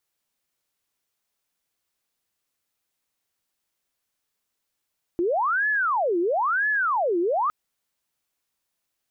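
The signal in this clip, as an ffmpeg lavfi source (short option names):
-f lavfi -i "aevalsrc='0.1*sin(2*PI*(1029.5*t-690.5/(2*PI*1)*sin(2*PI*1*t)))':d=2.31:s=44100"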